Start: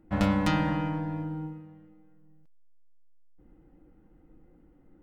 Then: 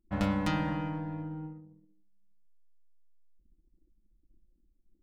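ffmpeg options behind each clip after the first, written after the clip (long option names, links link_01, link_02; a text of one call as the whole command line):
ffmpeg -i in.wav -af "anlmdn=0.0251,volume=-4.5dB" out.wav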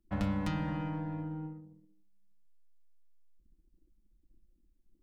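ffmpeg -i in.wav -filter_complex "[0:a]acrossover=split=190[link_01][link_02];[link_02]acompressor=threshold=-36dB:ratio=5[link_03];[link_01][link_03]amix=inputs=2:normalize=0" out.wav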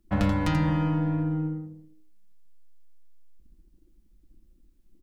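ffmpeg -i in.wav -af "aecho=1:1:84:0.447,volume=9dB" out.wav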